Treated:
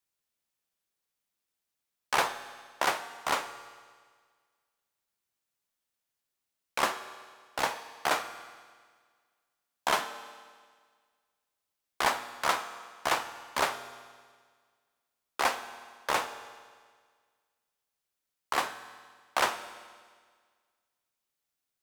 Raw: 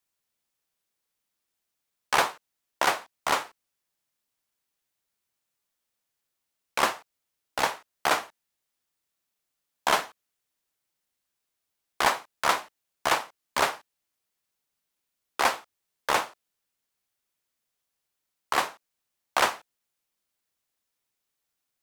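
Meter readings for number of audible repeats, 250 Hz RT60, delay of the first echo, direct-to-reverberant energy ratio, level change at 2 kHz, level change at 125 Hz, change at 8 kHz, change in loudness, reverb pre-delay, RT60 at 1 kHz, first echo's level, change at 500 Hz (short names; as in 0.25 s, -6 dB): none, 1.7 s, none, 10.0 dB, -3.5 dB, -3.5 dB, -3.5 dB, -4.0 dB, 9 ms, 1.7 s, none, -3.5 dB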